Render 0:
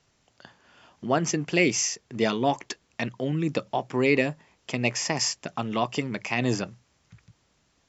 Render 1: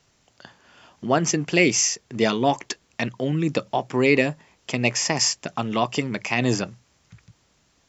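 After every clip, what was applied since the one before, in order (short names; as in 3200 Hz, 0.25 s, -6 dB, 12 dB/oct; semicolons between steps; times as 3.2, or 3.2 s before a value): high shelf 6100 Hz +4 dB; gain +3.5 dB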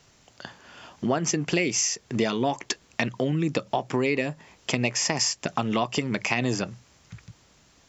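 compressor 5:1, threshold -27 dBFS, peak gain reduction 13.5 dB; gain +5 dB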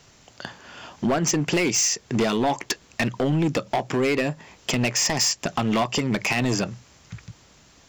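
hard clip -22 dBFS, distortion -10 dB; gain +5 dB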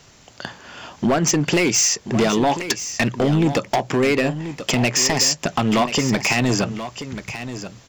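echo 1.033 s -11.5 dB; gain +4 dB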